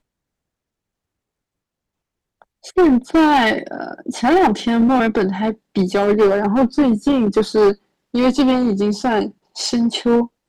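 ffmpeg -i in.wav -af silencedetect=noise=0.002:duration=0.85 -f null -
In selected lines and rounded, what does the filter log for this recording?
silence_start: 0.00
silence_end: 2.42 | silence_duration: 2.42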